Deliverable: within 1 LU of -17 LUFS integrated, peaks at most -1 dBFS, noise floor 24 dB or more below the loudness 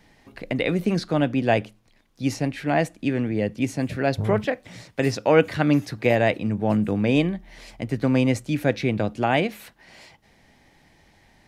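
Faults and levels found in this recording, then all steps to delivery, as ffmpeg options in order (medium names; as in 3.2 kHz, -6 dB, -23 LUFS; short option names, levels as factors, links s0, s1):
loudness -23.5 LUFS; peak level -4.0 dBFS; loudness target -17.0 LUFS
-> -af "volume=2.11,alimiter=limit=0.891:level=0:latency=1"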